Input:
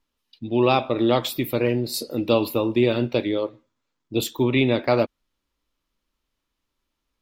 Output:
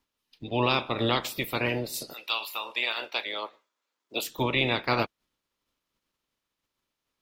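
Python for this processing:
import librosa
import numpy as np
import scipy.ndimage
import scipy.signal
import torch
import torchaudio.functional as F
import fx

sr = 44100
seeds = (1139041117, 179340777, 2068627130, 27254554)

y = fx.spec_clip(x, sr, under_db=18)
y = fx.highpass(y, sr, hz=fx.line((2.12, 1500.0), (4.26, 350.0)), slope=12, at=(2.12, 4.26), fade=0.02)
y = y * 10.0 ** (-6.0 / 20.0)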